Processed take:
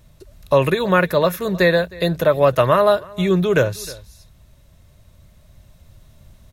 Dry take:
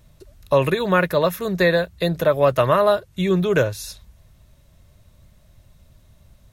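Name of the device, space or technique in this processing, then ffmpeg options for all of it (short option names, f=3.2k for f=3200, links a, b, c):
ducked delay: -filter_complex "[0:a]asplit=3[a][b][c];[b]adelay=312,volume=-2dB[d];[c]apad=whole_len=301553[e];[d][e]sidechaincompress=threshold=-38dB:ratio=5:attack=47:release=1470[f];[a][f]amix=inputs=2:normalize=0,volume=2dB"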